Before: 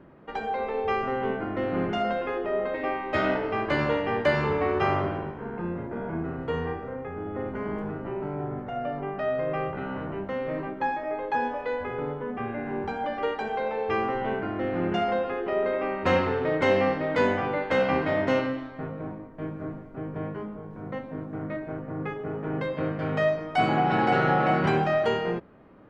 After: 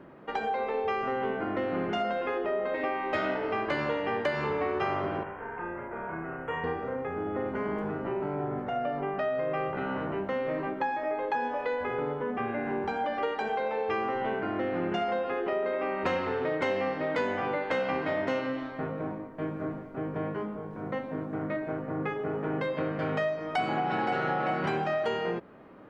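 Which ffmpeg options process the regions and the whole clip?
-filter_complex "[0:a]asettb=1/sr,asplit=3[s0][s1][s2];[s0]atrim=end=5.234[s3];[s1]atrim=start=5.23:end=6.64,asetpts=PTS-STARTPTS,afade=t=in:d=0.004:c=qsin,afade=t=out:st=1.406:d=0.004:c=qsin,asuperstop=centerf=4600:order=4:qfactor=0.84,equalizer=f=220:w=0.55:g=-14,asplit=2[s4][s5];[s5]adelay=31,volume=0.631[s6];[s4][s6]amix=inputs=2:normalize=0,atrim=end_sample=62181[s7];[s2]atrim=start=6.636[s8];[s3][s7]acrossfade=d=0.004:c1=hsin:c2=qsin[s9];[s9][s8]acrossfade=d=0.004:c1=qsin:c2=hsin,lowshelf=f=130:g=-11,acompressor=threshold=0.0282:ratio=4,volume=1.5"

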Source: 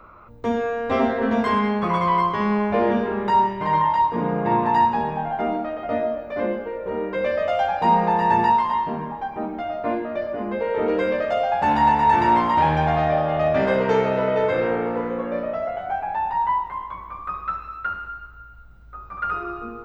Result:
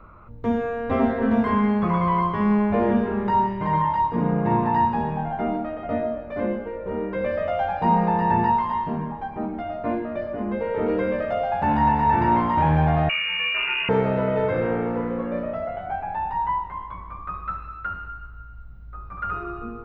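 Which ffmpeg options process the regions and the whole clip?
-filter_complex "[0:a]asettb=1/sr,asplit=3[s0][s1][s2];[s0]atrim=end=13.094[s3];[s1]atrim=start=13.09:end=13.89,asetpts=PTS-STARTPTS,afade=t=in:d=0.004:c=qsin,afade=t=out:st=0.796:d=0.004:c=qsin,equalizer=f=140:t=o:w=1.3:g=13.5,lowpass=f=2600:t=q:w=0.5098,lowpass=f=2600:t=q:w=0.6013,lowpass=f=2600:t=q:w=0.9,lowpass=f=2600:t=q:w=2.563,afreqshift=-3000[s4];[s2]atrim=start=13.886[s5];[s3][s4]acrossfade=d=0.004:c1=hsin:c2=qsin[s6];[s6][s5]acrossfade=d=0.004:c1=qsin:c2=hsin,acrossover=split=2700[s7][s8];[s8]acompressor=threshold=0.00501:ratio=4:attack=1:release=60[s9];[s7][s9]amix=inputs=2:normalize=0,bass=f=250:g=9,treble=f=4000:g=-8,volume=0.708"

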